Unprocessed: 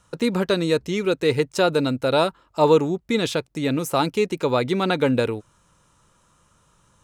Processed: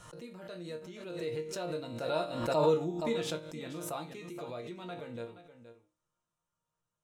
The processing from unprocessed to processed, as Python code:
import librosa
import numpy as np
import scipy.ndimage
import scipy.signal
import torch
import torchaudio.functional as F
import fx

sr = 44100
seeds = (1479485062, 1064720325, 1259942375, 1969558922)

p1 = fx.doppler_pass(x, sr, speed_mps=6, closest_m=3.6, pass_at_s=2.81)
p2 = fx.peak_eq(p1, sr, hz=650.0, db=7.0, octaves=0.25)
p3 = fx.resonator_bank(p2, sr, root=46, chord='sus4', decay_s=0.27)
p4 = p3 + fx.echo_single(p3, sr, ms=473, db=-13.0, dry=0)
y = fx.pre_swell(p4, sr, db_per_s=49.0)